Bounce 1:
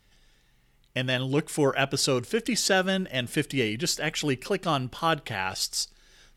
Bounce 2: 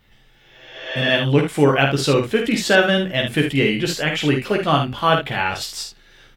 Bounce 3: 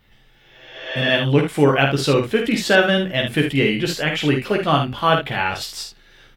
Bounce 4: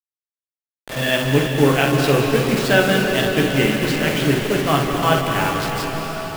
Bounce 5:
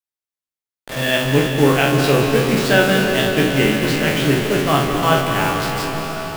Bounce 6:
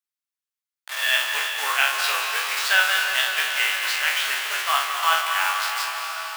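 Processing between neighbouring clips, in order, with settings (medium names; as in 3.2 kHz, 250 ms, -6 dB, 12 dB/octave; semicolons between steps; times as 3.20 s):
spectral replace 0.35–1.06 s, 280–7400 Hz both; high-order bell 7.4 kHz -10 dB; on a send: early reflections 14 ms -5 dB, 51 ms -6 dB, 74 ms -8 dB; on the sum: trim +6.5 dB
peaking EQ 7.2 kHz -3 dB 0.78 oct
send-on-delta sampling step -22 dBFS; on a send at -2 dB: reverberation RT60 5.6 s, pre-delay 151 ms; on the sum: trim -1 dB
spectral sustain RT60 0.43 s
high-pass 1 kHz 24 dB/octave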